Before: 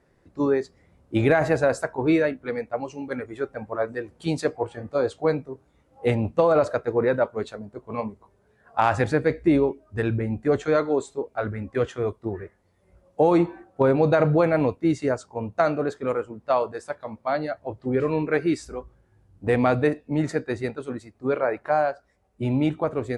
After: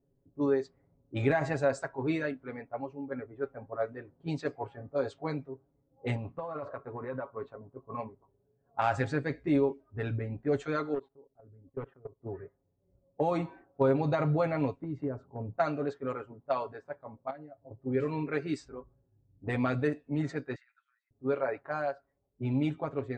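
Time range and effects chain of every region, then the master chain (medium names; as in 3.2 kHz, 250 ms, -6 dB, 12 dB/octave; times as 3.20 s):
6.16–7.97 s: peaking EQ 1.1 kHz +13 dB 0.26 oct + compression 8:1, threshold -24 dBFS
10.94–12.21 s: level held to a coarse grid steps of 23 dB + hard clipper -22 dBFS + distance through air 430 m
14.80–15.56 s: tilt shelf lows +9.5 dB, about 870 Hz + compression, threshold -23 dBFS
17.30–17.71 s: compression 4:1, threshold -36 dBFS + distance through air 100 m + comb of notches 200 Hz
20.55–21.11 s: steep high-pass 1.5 kHz 48 dB/octave + compressor with a negative ratio -46 dBFS
whole clip: level-controlled noise filter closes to 400 Hz, open at -18 dBFS; elliptic low-pass 8.4 kHz, stop band 40 dB; comb 7.3 ms, depth 70%; trim -9 dB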